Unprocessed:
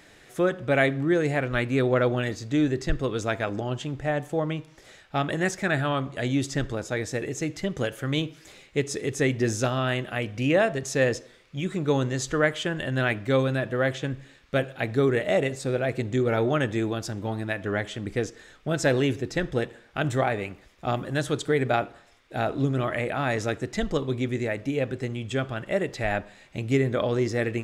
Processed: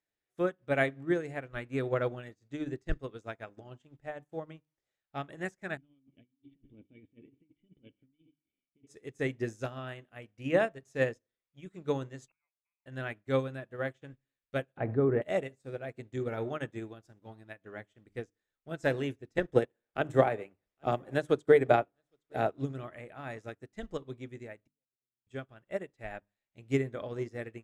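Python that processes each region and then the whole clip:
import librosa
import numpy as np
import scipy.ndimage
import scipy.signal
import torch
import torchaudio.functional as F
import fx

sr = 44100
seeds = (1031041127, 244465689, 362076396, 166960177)

y = fx.chain(x, sr, fx.leveller(passes=2),
    fx.formant_cascade(vowel='i'),
    fx.over_compress(threshold_db=-35.0, ratio=-1.0), at=(5.77, 8.87))
y = fx.chain(y, sr, fx.gate_flip(shuts_db=-26.0, range_db=-32),
    fx.leveller(passes=1),
    fx.freq_invert(carrier_hz=2700), at=(12.28, 12.86))
y = fx.chain(y, sr, fx.lowpass(hz=1100.0, slope=12),
    fx.env_flatten(amount_pct=70), at=(14.77, 15.22))
y = fx.chain(y, sr, fx.peak_eq(hz=490.0, db=6.0, octaves=1.8),
    fx.echo_single(ms=811, db=-21.5),
    fx.band_squash(depth_pct=40), at=(19.38, 22.5))
y = fx.chain(y, sr, fx.halfwave_gain(db=-3.0),
    fx.gate_flip(shuts_db=-27.0, range_db=-34), at=(24.6, 25.27))
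y = fx.dynamic_eq(y, sr, hz=4300.0, q=1.4, threshold_db=-47.0, ratio=4.0, max_db=-5)
y = fx.hum_notches(y, sr, base_hz=50, count=6)
y = fx.upward_expand(y, sr, threshold_db=-42.0, expansion=2.5)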